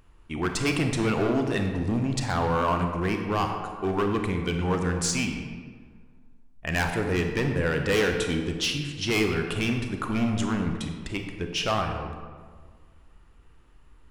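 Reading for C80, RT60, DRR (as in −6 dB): 6.5 dB, 1.6 s, 4.0 dB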